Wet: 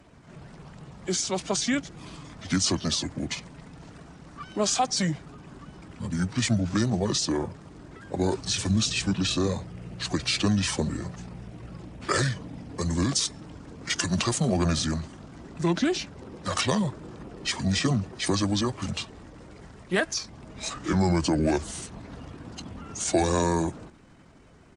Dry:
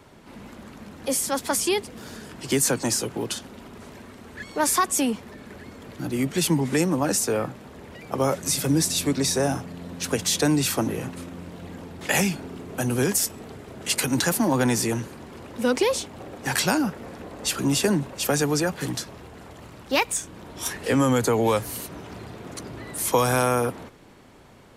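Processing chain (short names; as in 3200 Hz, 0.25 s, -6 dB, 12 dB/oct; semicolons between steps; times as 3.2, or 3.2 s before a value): bin magnitudes rounded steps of 15 dB; pitch shift -6.5 st; gain -2 dB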